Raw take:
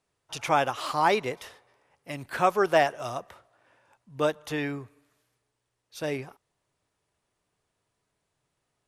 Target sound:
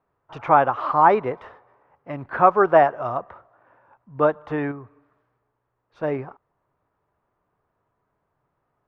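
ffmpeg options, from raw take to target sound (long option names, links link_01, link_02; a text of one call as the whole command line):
ffmpeg -i in.wav -filter_complex "[0:a]asettb=1/sr,asplit=3[link_01][link_02][link_03];[link_01]atrim=end=4.714[link_04];[link_02]atrim=start=4.71:end=6.03,asetpts=PTS-STARTPTS,afade=type=in:duration=0.004:curve=qsin,afade=type=out:start_time=1.316:duration=0.004:curve=qsin,acompressor=threshold=-39dB:ratio=6[link_05];[link_03]atrim=start=6.026[link_06];[link_04][link_05]acrossfade=duration=0.004:curve1=hsin:curve2=qsin[link_07];[link_07][link_06]acrossfade=duration=0.004:curve1=qsin:curve2=hsin,lowpass=frequency=1200:width_type=q:width=1.6,volume=5dB" out.wav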